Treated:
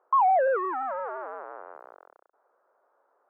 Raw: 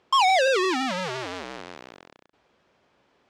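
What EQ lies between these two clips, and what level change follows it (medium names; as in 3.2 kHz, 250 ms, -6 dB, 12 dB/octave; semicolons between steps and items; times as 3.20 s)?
high-pass 480 Hz 24 dB/octave; Chebyshev low-pass 1.4 kHz, order 4; 0.0 dB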